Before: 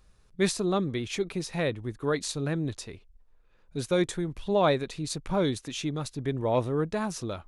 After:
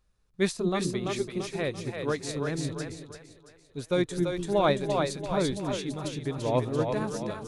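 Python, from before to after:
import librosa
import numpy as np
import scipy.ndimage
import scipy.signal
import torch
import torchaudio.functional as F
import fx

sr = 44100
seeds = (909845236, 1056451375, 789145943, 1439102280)

y = fx.echo_split(x, sr, split_hz=380.0, low_ms=203, high_ms=339, feedback_pct=52, wet_db=-3)
y = fx.upward_expand(y, sr, threshold_db=-42.0, expansion=1.5)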